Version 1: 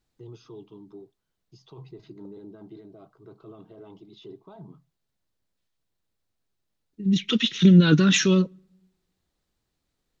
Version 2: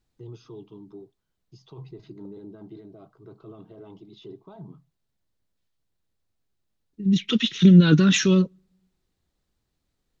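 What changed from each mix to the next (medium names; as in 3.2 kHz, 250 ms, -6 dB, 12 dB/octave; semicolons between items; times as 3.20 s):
second voice: send -8.5 dB; master: add bass shelf 220 Hz +4.5 dB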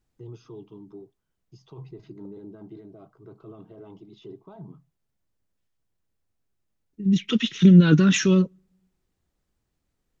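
master: add peaking EQ 4 kHz -6 dB 0.59 oct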